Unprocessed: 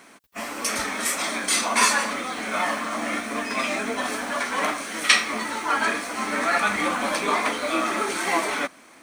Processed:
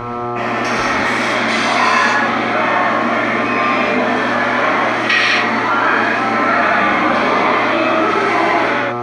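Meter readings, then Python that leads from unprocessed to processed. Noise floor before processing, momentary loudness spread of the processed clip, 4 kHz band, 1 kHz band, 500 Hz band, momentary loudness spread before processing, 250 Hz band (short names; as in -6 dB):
-50 dBFS, 3 LU, +5.0 dB, +11.5 dB, +12.5 dB, 8 LU, +11.5 dB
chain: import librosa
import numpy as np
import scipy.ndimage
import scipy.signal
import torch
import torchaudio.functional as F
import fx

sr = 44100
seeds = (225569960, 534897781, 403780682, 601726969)

y = fx.air_absorb(x, sr, metres=250.0)
y = fx.dmg_buzz(y, sr, base_hz=120.0, harmonics=11, level_db=-41.0, tilt_db=-1, odd_only=False)
y = fx.rev_gated(y, sr, seeds[0], gate_ms=280, shape='flat', drr_db=-7.5)
y = fx.env_flatten(y, sr, amount_pct=50)
y = y * 10.0 ** (1.5 / 20.0)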